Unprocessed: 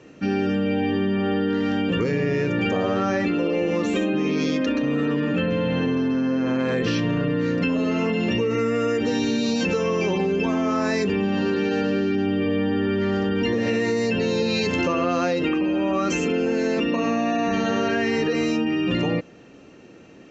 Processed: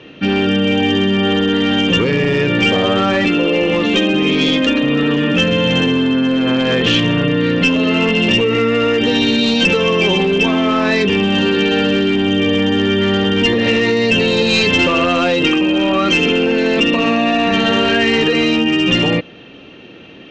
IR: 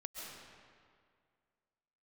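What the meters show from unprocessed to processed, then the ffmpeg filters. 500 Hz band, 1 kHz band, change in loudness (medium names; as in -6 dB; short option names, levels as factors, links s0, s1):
+7.5 dB, +8.0 dB, +9.0 dB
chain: -af "lowpass=f=3300:t=q:w=4.4,aresample=16000,aeval=exprs='clip(val(0),-1,0.141)':c=same,aresample=44100,volume=2.37"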